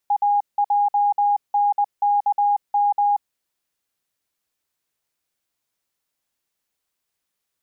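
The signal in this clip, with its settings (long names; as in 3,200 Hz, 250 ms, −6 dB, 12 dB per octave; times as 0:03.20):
Morse code "AJNKM" 20 words per minute 819 Hz −15 dBFS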